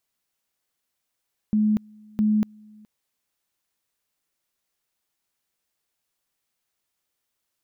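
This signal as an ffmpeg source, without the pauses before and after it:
-f lavfi -i "aevalsrc='pow(10,(-17-28.5*gte(mod(t,0.66),0.24))/20)*sin(2*PI*213*t)':d=1.32:s=44100"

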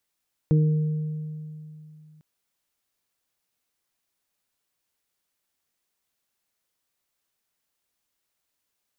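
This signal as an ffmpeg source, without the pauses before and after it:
-f lavfi -i "aevalsrc='0.178*pow(10,-3*t/2.87)*sin(2*PI*154*t)+0.0596*pow(10,-3*t/0.6)*sin(2*PI*308*t)+0.0398*pow(10,-3*t/1.72)*sin(2*PI*462*t)':d=1.7:s=44100"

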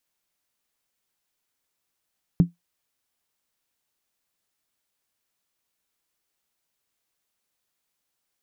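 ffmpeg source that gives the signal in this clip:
-f lavfi -i "aevalsrc='0.398*pow(10,-3*t/0.15)*sin(2*PI*172*t)+0.1*pow(10,-3*t/0.119)*sin(2*PI*274.2*t)+0.0251*pow(10,-3*t/0.103)*sin(2*PI*367.4*t)+0.00631*pow(10,-3*t/0.099)*sin(2*PI*394.9*t)+0.00158*pow(10,-3*t/0.092)*sin(2*PI*456.3*t)':d=0.63:s=44100"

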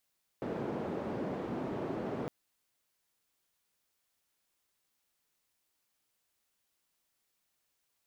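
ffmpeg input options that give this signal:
-f lavfi -i "anoisesrc=c=white:d=1.86:r=44100:seed=1,highpass=f=160,lowpass=f=430,volume=-13.6dB"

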